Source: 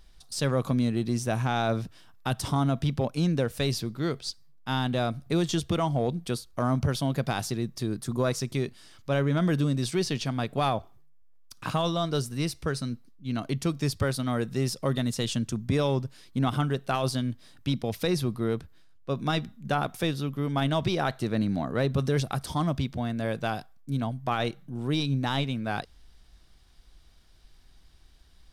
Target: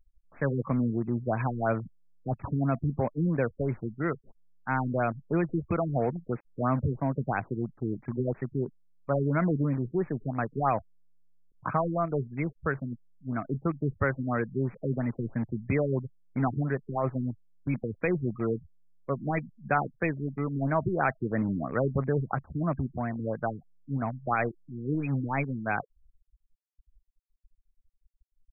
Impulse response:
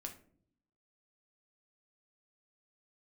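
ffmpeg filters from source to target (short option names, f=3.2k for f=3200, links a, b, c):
-filter_complex "[0:a]tiltshelf=f=890:g=-4.5,afftfilt=real='re*gte(hypot(re,im),0.02)':imag='im*gte(hypot(re,im),0.02)':win_size=1024:overlap=0.75,acrossover=split=210|3200[a][b][c];[c]acontrast=47[d];[a][b][d]amix=inputs=3:normalize=0,asoftclip=type=hard:threshold=-14.5dB,asplit=2[e][f];[f]acrusher=bits=4:mix=0:aa=0.000001,volume=-11dB[g];[e][g]amix=inputs=2:normalize=0,afftfilt=real='re*lt(b*sr/1024,440*pow(2600/440,0.5+0.5*sin(2*PI*3*pts/sr)))':imag='im*lt(b*sr/1024,440*pow(2600/440,0.5+0.5*sin(2*PI*3*pts/sr)))':win_size=1024:overlap=0.75"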